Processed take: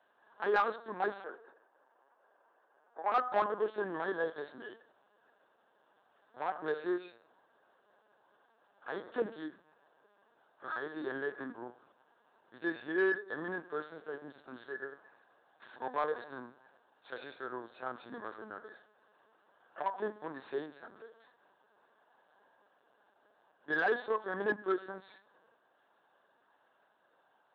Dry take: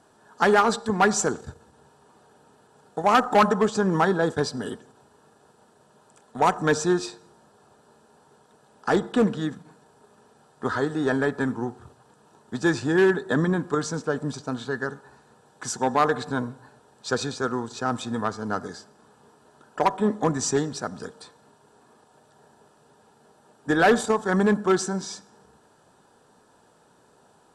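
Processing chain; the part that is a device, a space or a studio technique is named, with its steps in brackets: harmonic-percussive split percussive -14 dB; talking toy (LPC vocoder at 8 kHz pitch kept; HPF 470 Hz 12 dB/oct; bell 1600 Hz +5.5 dB 0.24 oct; soft clip -13.5 dBFS, distortion -20 dB); 1.24–3.12 three-band isolator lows -17 dB, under 300 Hz, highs -16 dB, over 2300 Hz; gain -5.5 dB

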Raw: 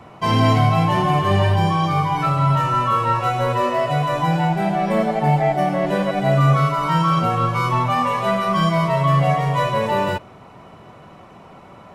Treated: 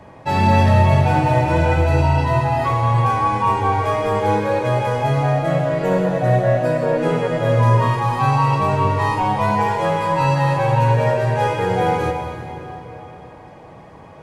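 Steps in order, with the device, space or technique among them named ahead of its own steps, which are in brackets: slowed and reverbed (varispeed -16%; reverb RT60 3.5 s, pre-delay 58 ms, DRR 4 dB)

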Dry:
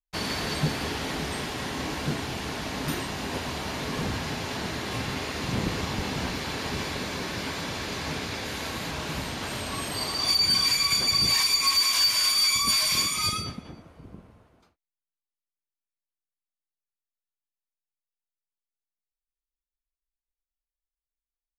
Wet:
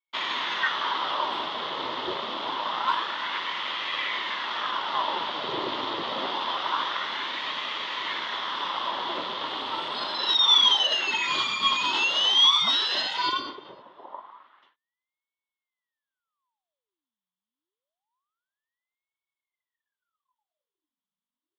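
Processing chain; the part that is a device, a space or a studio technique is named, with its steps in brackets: voice changer toy (ring modulator with a swept carrier 1200 Hz, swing 85%, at 0.26 Hz; speaker cabinet 400–3500 Hz, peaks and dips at 470 Hz -7 dB, 720 Hz -6 dB, 1000 Hz +8 dB, 1600 Hz -6 dB, 2400 Hz -10 dB, 3400 Hz +9 dB); gain +6.5 dB

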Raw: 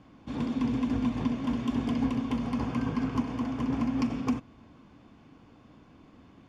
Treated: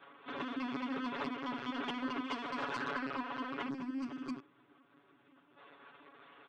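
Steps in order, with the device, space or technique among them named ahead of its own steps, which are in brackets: talking toy (LPC vocoder at 8 kHz pitch kept; HPF 520 Hz 12 dB/oct; bell 1500 Hz +9 dB 0.52 oct; soft clip -31 dBFS, distortion -17 dB); 2.24–2.92 tone controls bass -2 dB, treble +7 dB; 3.69–5.57 spectral gain 390–4500 Hz -10 dB; high shelf 4800 Hz +8 dB; comb 7.1 ms, depth 97%

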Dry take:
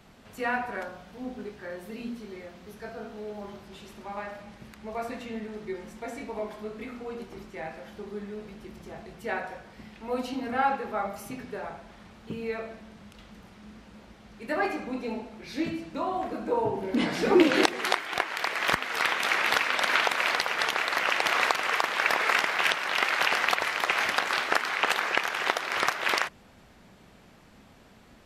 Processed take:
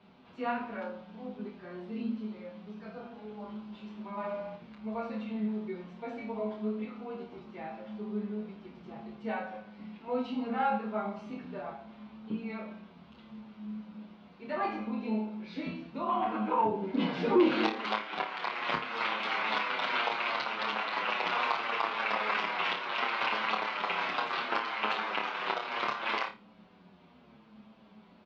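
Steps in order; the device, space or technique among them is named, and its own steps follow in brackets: 4.13–4.56 flutter echo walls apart 11.3 m, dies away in 1 s; 16.08–16.64 spectral gain 700–3500 Hz +10 dB; flutter echo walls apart 4.8 m, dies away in 0.27 s; barber-pole flanger into a guitar amplifier (endless flanger 7.7 ms -0.71 Hz; soft clip -14.5 dBFS, distortion -18 dB; speaker cabinet 97–4000 Hz, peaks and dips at 110 Hz -9 dB, 210 Hz +9 dB, 1000 Hz +4 dB, 1800 Hz -7 dB); gain -2.5 dB

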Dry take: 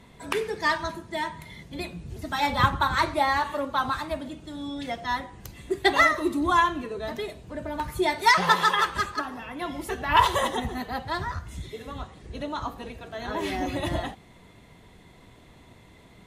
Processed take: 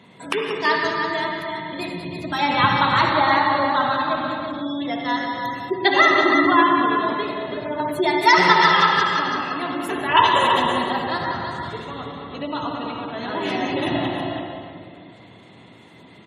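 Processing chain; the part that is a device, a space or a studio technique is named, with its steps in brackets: 10.93–11.61 expander -36 dBFS; PA in a hall (HPF 120 Hz 24 dB/oct; bell 2900 Hz +4 dB 0.37 oct; echo 0.186 s -11 dB; reverb RT60 2.2 s, pre-delay 54 ms, DRR 1.5 dB); 2.49–3.13 bell 2800 Hz +5.5 dB 0.21 oct; echo 0.33 s -7 dB; spectral gate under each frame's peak -30 dB strong; gain +3 dB

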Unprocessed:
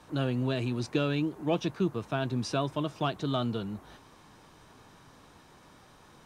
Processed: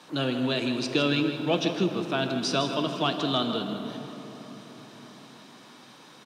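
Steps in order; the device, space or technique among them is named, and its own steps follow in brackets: PA in a hall (HPF 160 Hz 24 dB/oct; bell 3800 Hz +8 dB 1.5 oct; echo 0.16 s -10.5 dB; reverb RT60 4.4 s, pre-delay 18 ms, DRR 7 dB); gain +2.5 dB

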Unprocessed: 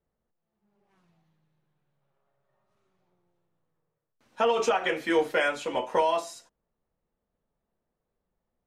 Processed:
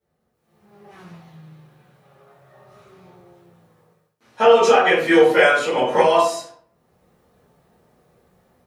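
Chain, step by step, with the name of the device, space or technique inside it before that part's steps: far laptop microphone (reverb RT60 0.45 s, pre-delay 7 ms, DRR -10.5 dB; HPF 100 Hz 12 dB/oct; AGC gain up to 15.5 dB); gain -1 dB

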